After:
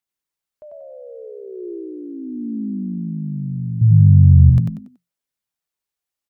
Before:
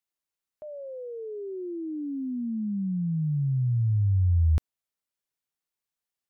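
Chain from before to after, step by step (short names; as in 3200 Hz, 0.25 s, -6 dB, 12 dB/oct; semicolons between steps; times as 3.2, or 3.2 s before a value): phaser 0.39 Hz, delay 4 ms, feedback 28%; 3.81–4.5 bell 120 Hz +14 dB 1.7 oct; frequency-shifting echo 94 ms, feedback 32%, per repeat +43 Hz, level -3.5 dB; gain +1 dB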